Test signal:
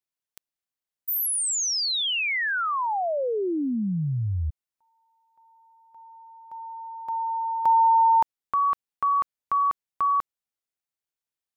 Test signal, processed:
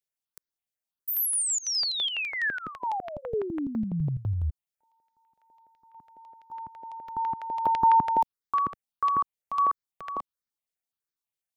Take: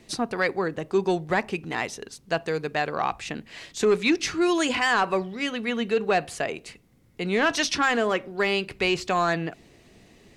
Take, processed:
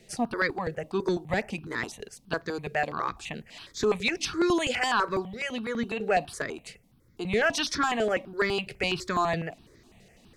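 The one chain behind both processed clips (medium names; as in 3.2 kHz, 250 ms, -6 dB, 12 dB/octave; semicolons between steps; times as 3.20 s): stepped phaser 12 Hz 280–2800 Hz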